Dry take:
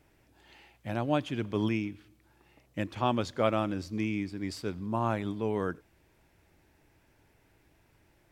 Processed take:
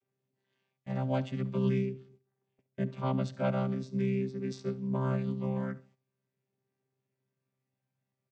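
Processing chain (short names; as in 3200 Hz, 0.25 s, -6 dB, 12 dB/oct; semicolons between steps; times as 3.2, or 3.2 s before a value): chord vocoder bare fifth, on C3; gate -60 dBFS, range -17 dB; high shelf 2800 Hz +10.5 dB, from 1.93 s +4 dB, from 3.24 s +9.5 dB; feedback echo 69 ms, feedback 29%, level -18.5 dB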